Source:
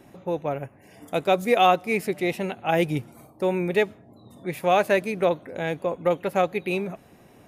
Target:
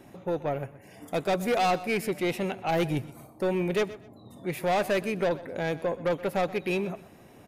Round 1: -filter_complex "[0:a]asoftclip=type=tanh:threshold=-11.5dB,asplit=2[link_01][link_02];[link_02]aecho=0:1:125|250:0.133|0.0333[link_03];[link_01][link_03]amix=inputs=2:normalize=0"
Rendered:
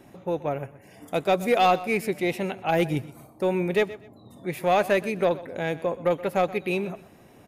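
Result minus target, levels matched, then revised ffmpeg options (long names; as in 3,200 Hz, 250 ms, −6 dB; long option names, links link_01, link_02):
soft clipping: distortion −10 dB
-filter_complex "[0:a]asoftclip=type=tanh:threshold=-21dB,asplit=2[link_01][link_02];[link_02]aecho=0:1:125|250:0.133|0.0333[link_03];[link_01][link_03]amix=inputs=2:normalize=0"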